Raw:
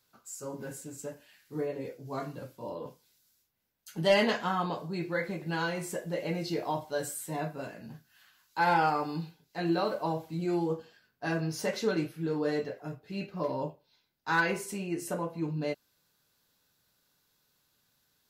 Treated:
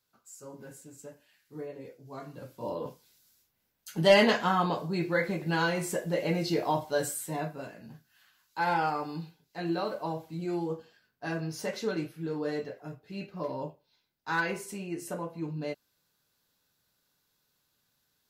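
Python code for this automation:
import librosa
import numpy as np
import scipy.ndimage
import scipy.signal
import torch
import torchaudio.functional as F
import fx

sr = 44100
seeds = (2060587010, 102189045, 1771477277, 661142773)

y = fx.gain(x, sr, db=fx.line((2.23, -6.5), (2.66, 4.0), (7.02, 4.0), (7.72, -2.5)))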